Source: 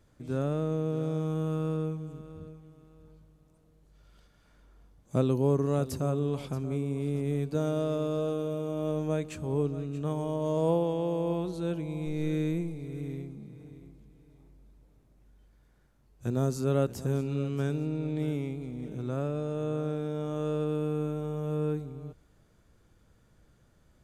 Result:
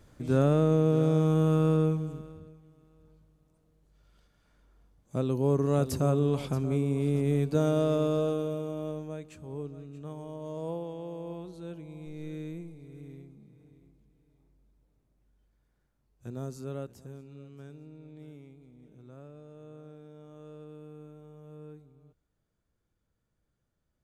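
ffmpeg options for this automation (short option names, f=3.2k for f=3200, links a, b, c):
-af "volume=14.5dB,afade=t=out:st=1.96:d=0.46:silence=0.281838,afade=t=in:st=5.16:d=0.82:silence=0.398107,afade=t=out:st=8.05:d=1.05:silence=0.223872,afade=t=out:st=16.59:d=0.58:silence=0.421697"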